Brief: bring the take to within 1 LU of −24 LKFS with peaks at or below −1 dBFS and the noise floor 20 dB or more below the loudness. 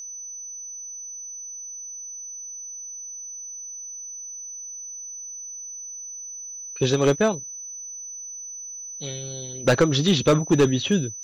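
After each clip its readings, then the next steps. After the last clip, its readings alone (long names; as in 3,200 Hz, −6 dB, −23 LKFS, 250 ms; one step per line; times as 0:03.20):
share of clipped samples 0.4%; peaks flattened at −11.5 dBFS; interfering tone 6,000 Hz; level of the tone −34 dBFS; integrated loudness −26.5 LKFS; sample peak −11.5 dBFS; target loudness −24.0 LKFS
→ clipped peaks rebuilt −11.5 dBFS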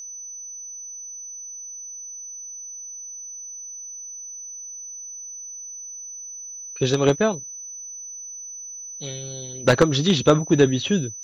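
share of clipped samples 0.0%; interfering tone 6,000 Hz; level of the tone −34 dBFS
→ notch filter 6,000 Hz, Q 30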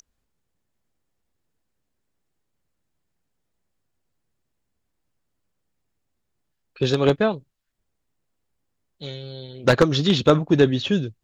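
interfering tone none found; integrated loudness −20.0 LKFS; sample peak −2.5 dBFS; target loudness −24.0 LKFS
→ level −4 dB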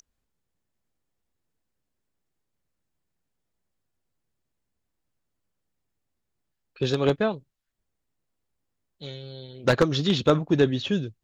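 integrated loudness −24.0 LKFS; sample peak −6.5 dBFS; background noise floor −81 dBFS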